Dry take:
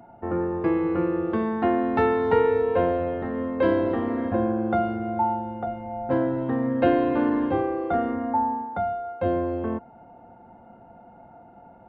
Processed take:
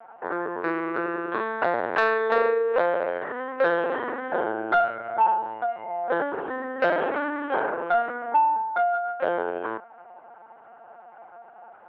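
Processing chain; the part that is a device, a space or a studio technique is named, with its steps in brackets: talking toy (LPC vocoder at 8 kHz pitch kept; high-pass 580 Hz 12 dB/octave; peaking EQ 1.5 kHz +9 dB 0.33 oct; saturation -15 dBFS, distortion -22 dB); trim +5 dB

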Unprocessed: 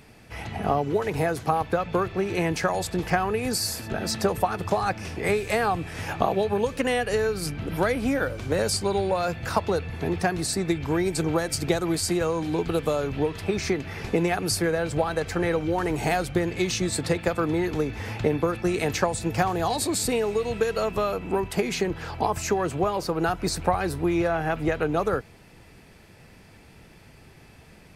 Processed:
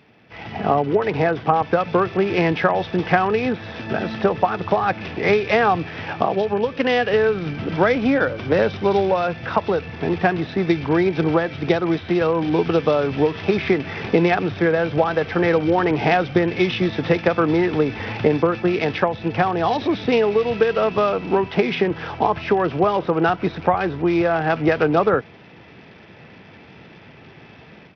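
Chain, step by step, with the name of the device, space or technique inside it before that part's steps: Bluetooth headset (high-pass 130 Hz 12 dB/octave; level rider gain up to 10 dB; resampled via 8 kHz; trim -1.5 dB; SBC 64 kbps 44.1 kHz)

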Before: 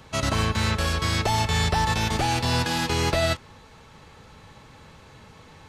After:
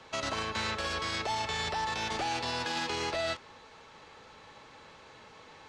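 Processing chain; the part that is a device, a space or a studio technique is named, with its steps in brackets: DJ mixer with the lows and highs turned down (three-band isolator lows -14 dB, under 290 Hz, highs -23 dB, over 7.8 kHz; peak limiter -23 dBFS, peak gain reduction 8.5 dB); trim -1.5 dB

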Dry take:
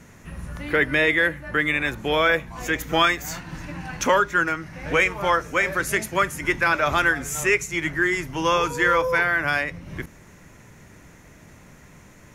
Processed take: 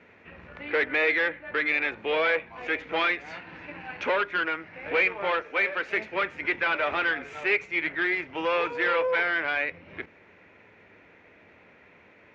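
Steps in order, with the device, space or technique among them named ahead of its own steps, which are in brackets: 5.42–5.93 s: peaking EQ 110 Hz -12.5 dB 2 oct; guitar amplifier (valve stage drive 20 dB, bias 0.6; tone controls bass -12 dB, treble -11 dB; cabinet simulation 81–4200 Hz, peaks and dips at 91 Hz +5 dB, 140 Hz -8 dB, 460 Hz +4 dB, 1.1 kHz -4 dB, 2.4 kHz +7 dB)

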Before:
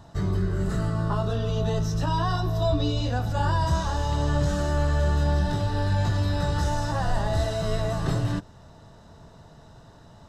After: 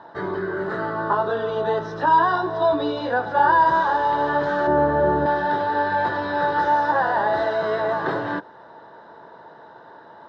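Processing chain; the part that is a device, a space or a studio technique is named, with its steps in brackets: 4.67–5.26 s: tilt shelf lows +10 dB, about 900 Hz; phone earpiece (cabinet simulation 350–3500 Hz, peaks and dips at 350 Hz +7 dB, 500 Hz +6 dB, 920 Hz +10 dB, 1.6 kHz +10 dB, 2.7 kHz -9 dB); trim +4.5 dB

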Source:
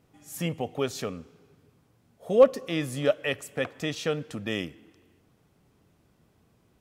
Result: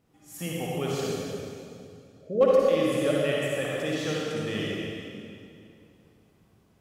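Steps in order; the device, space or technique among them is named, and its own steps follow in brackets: 1.04–2.41 s: Chebyshev low-pass 640 Hz, order 8; stairwell (reverberation RT60 2.5 s, pre-delay 47 ms, DRR -5 dB); trim -5 dB

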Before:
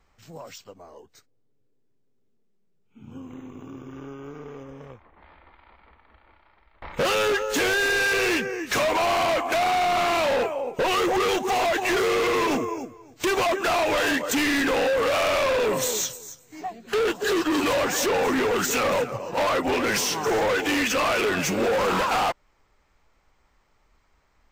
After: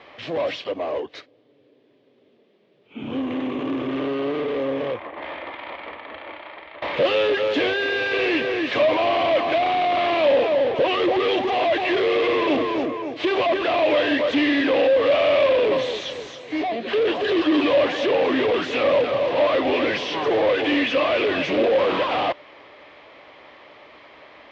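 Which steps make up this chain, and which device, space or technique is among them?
overdrive pedal into a guitar cabinet (overdrive pedal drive 31 dB, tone 3.1 kHz, clips at -20 dBFS; cabinet simulation 94–3900 Hz, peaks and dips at 190 Hz -6 dB, 300 Hz +6 dB, 580 Hz +7 dB, 870 Hz -5 dB, 1.4 kHz -9 dB, 3.3 kHz +4 dB); trim +1.5 dB

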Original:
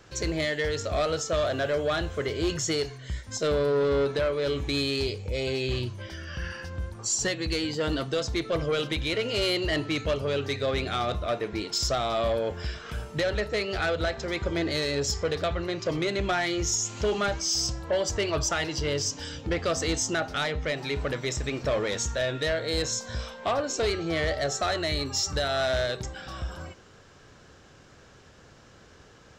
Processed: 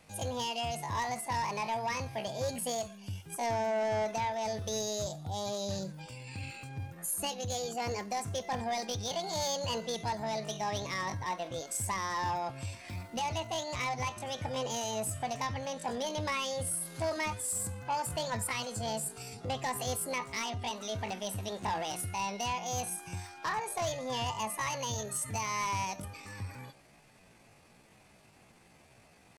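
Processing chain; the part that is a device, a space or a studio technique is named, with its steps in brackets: chipmunk voice (pitch shift +7.5 st); trim -7 dB

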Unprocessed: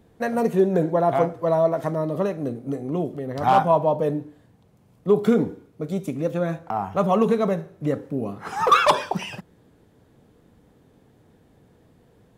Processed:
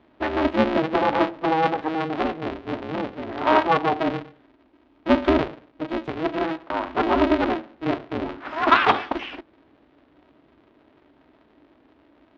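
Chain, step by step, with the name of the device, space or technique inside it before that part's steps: 2.85–4.13 s: bass shelf 160 Hz -5 dB; ring modulator pedal into a guitar cabinet (polarity switched at an audio rate 160 Hz; cabinet simulation 81–3600 Hz, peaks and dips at 85 Hz -8 dB, 120 Hz -6 dB, 180 Hz -6 dB, 290 Hz +5 dB, 480 Hz -4 dB)

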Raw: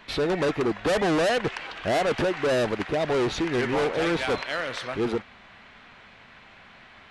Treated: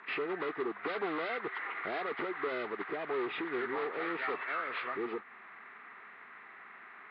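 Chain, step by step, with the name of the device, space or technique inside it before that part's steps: hearing aid with frequency lowering (knee-point frequency compression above 1.1 kHz 1.5:1; compression 2.5:1, threshold -32 dBFS, peak gain reduction 8 dB; cabinet simulation 310–6400 Hz, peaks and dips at 400 Hz +6 dB, 570 Hz -8 dB, 1.2 kHz +9 dB, 2 kHz +9 dB, 3.8 kHz +5 dB, 5.4 kHz -10 dB); trim -5 dB

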